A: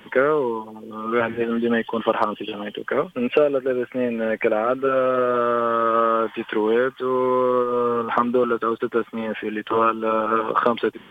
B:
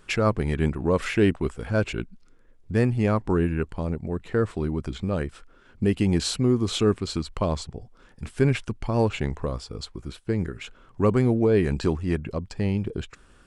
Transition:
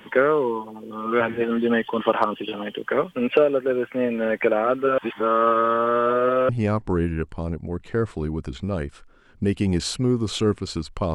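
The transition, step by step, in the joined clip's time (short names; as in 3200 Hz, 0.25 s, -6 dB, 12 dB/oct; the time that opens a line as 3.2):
A
4.98–6.49 reverse
6.49 switch to B from 2.89 s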